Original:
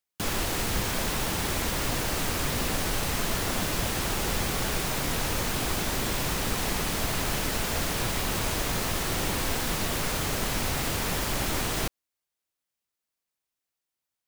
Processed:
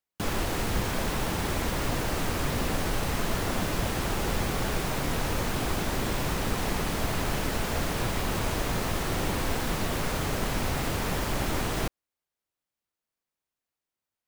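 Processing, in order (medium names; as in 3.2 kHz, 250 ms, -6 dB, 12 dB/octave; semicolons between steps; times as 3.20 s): treble shelf 2.3 kHz -7.5 dB; trim +1.5 dB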